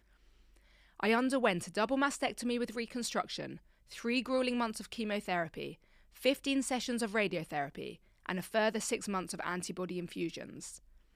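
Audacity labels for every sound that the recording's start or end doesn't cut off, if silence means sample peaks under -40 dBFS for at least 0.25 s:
1.000000	3.540000	sound
3.920000	5.720000	sound
6.230000	7.920000	sound
8.260000	10.750000	sound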